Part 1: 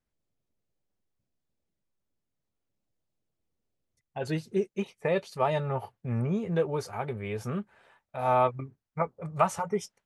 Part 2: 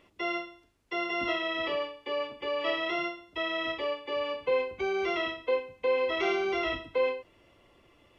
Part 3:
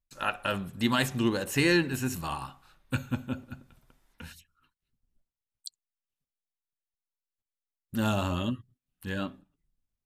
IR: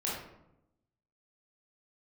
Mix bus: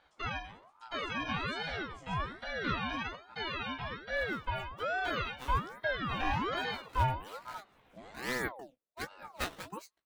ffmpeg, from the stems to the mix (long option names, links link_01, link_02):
-filter_complex "[0:a]acrusher=samples=11:mix=1:aa=0.000001:lfo=1:lforange=17.6:lforate=1.5,equalizer=frequency=3100:width=4.5:gain=8,volume=-6.5dB,afade=type=in:start_time=6.79:duration=0.23:silence=0.354813[link_01];[1:a]highshelf=frequency=5400:gain=-9.5,volume=1.5dB[link_02];[2:a]lowpass=frequency=7800:width=0.5412,lowpass=frequency=7800:width=1.3066,alimiter=limit=-20.5dB:level=0:latency=1:release=160,volume=-15.5dB[link_03];[link_01][link_02][link_03]amix=inputs=3:normalize=0,flanger=delay=15.5:depth=2:speed=0.71,aeval=exprs='val(0)*sin(2*PI*760*n/s+760*0.5/1.2*sin(2*PI*1.2*n/s))':channel_layout=same"